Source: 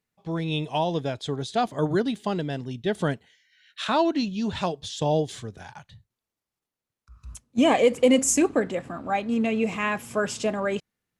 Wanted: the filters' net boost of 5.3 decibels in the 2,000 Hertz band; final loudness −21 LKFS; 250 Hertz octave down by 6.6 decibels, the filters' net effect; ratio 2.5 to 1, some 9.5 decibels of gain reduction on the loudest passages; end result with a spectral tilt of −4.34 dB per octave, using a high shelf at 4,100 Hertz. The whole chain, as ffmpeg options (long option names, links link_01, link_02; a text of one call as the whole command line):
ffmpeg -i in.wav -af "equalizer=frequency=250:width_type=o:gain=-8.5,equalizer=frequency=2000:width_type=o:gain=9,highshelf=frequency=4100:gain=-9,acompressor=threshold=-30dB:ratio=2.5,volume=12dB" out.wav